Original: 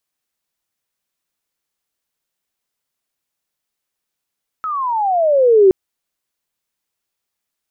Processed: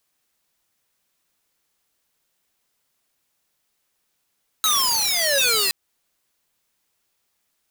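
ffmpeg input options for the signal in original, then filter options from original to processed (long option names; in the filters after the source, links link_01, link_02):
-f lavfi -i "aevalsrc='pow(10,(-5+14.5*(t/1.07-1))/20)*sin(2*PI*1310*1.07/(-22*log(2)/12)*(exp(-22*log(2)/12*t/1.07)-1))':duration=1.07:sample_rate=44100"
-filter_complex "[0:a]asplit=2[link_01][link_02];[link_02]acompressor=threshold=-18dB:ratio=16,volume=2.5dB[link_03];[link_01][link_03]amix=inputs=2:normalize=0,aeval=exprs='(mod(5.62*val(0)+1,2)-1)/5.62':channel_layout=same"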